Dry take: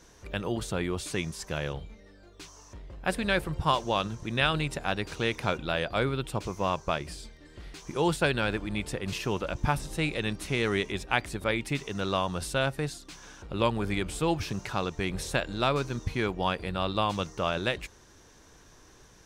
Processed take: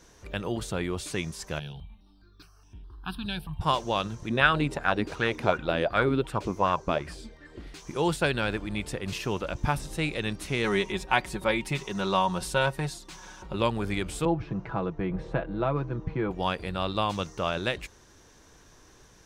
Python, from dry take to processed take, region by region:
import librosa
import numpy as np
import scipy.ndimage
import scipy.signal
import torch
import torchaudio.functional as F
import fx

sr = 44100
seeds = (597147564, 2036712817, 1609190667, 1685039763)

y = fx.chain(x, sr, fx.fixed_phaser(hz=2000.0, stages=6),
    fx.phaser_held(hz=4.8, low_hz=310.0, high_hz=4300.0), at=(1.59, 3.61))
y = fx.chain(y, sr, fx.high_shelf(hz=4300.0, db=-6.0),
    fx.bell_lfo(hz=2.7, low_hz=240.0, high_hz=1700.0, db=12), at=(4.29, 7.67))
y = fx.chain(y, sr, fx.peak_eq(hz=940.0, db=8.0, octaves=0.34),
    fx.comb(ms=5.4, depth=0.58), at=(10.64, 13.56))
y = fx.chain(y, sr, fx.bessel_lowpass(hz=1000.0, order=2),
    fx.comb(ms=6.1, depth=0.57),
    fx.band_squash(depth_pct=40), at=(14.25, 16.31))